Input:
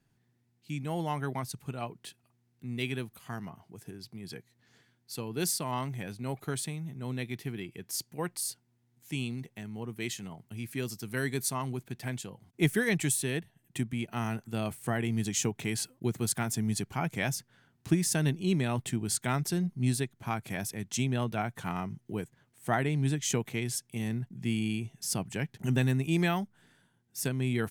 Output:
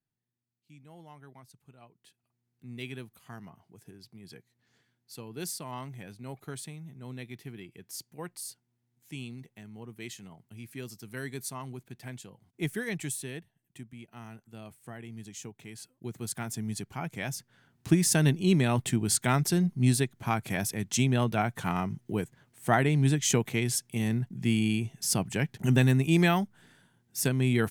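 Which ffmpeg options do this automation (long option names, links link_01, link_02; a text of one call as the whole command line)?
ffmpeg -i in.wav -af "volume=11.5dB,afade=type=in:start_time=1.94:duration=0.76:silence=0.251189,afade=type=out:start_time=13.15:duration=0.62:silence=0.446684,afade=type=in:start_time=15.77:duration=0.68:silence=0.354813,afade=type=in:start_time=17.25:duration=0.87:silence=0.375837" out.wav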